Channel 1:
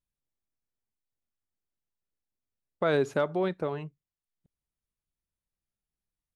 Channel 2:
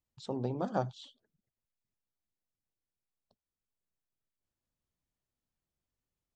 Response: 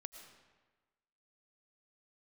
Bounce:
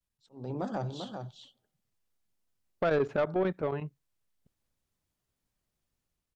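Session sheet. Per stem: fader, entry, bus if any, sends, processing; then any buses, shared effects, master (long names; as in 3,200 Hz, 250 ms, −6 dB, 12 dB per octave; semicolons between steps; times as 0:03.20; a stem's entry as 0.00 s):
+2.0 dB, 0.00 s, no send, no echo send, treble cut that deepens with the level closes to 2,600 Hz, closed at −28.5 dBFS; square-wave tremolo 11 Hz, depth 65%, duty 85%
−10.5 dB, 0.00 s, send −9 dB, echo send −5.5 dB, brickwall limiter −26.5 dBFS, peak gain reduction 9 dB; volume swells 214 ms; automatic gain control gain up to 14 dB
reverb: on, RT60 1.3 s, pre-delay 70 ms
echo: single-tap delay 401 ms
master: soft clipping −20 dBFS, distortion −14 dB; pitch vibrato 0.43 Hz 37 cents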